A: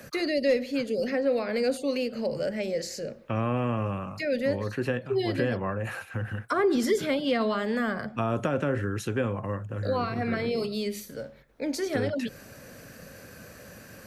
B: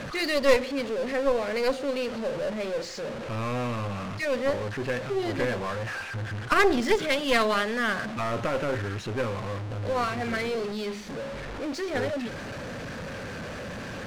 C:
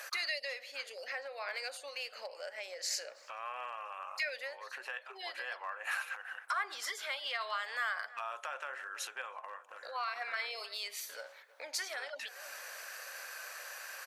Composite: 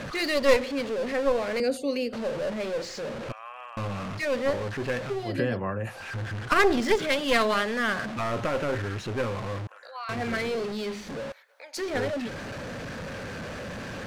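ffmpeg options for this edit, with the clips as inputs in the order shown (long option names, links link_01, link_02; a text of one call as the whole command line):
ffmpeg -i take0.wav -i take1.wav -i take2.wav -filter_complex "[0:a]asplit=2[link_01][link_02];[2:a]asplit=3[link_03][link_04][link_05];[1:a]asplit=6[link_06][link_07][link_08][link_09][link_10][link_11];[link_06]atrim=end=1.602[link_12];[link_01]atrim=start=1.598:end=2.132[link_13];[link_07]atrim=start=2.128:end=3.322[link_14];[link_03]atrim=start=3.318:end=3.772[link_15];[link_08]atrim=start=3.768:end=5.35[link_16];[link_02]atrim=start=5.11:end=6.09[link_17];[link_09]atrim=start=5.85:end=9.672[link_18];[link_04]atrim=start=9.668:end=10.092[link_19];[link_10]atrim=start=10.088:end=11.322[link_20];[link_05]atrim=start=11.318:end=11.772[link_21];[link_11]atrim=start=11.768[link_22];[link_12][link_13]acrossfade=duration=0.004:curve1=hsin:curve2=hsin[link_23];[link_23][link_14]acrossfade=duration=0.004:curve1=hsin:curve2=hsin[link_24];[link_24][link_15]acrossfade=duration=0.004:curve1=hsin:curve2=hsin[link_25];[link_25][link_16]acrossfade=duration=0.004:curve1=hsin:curve2=hsin[link_26];[link_26][link_17]acrossfade=duration=0.24:curve1=tri:curve2=tri[link_27];[link_27][link_18]acrossfade=duration=0.24:curve1=tri:curve2=tri[link_28];[link_28][link_19]acrossfade=duration=0.004:curve1=hsin:curve2=hsin[link_29];[link_29][link_20]acrossfade=duration=0.004:curve1=hsin:curve2=hsin[link_30];[link_30][link_21]acrossfade=duration=0.004:curve1=hsin:curve2=hsin[link_31];[link_31][link_22]acrossfade=duration=0.004:curve1=hsin:curve2=hsin" out.wav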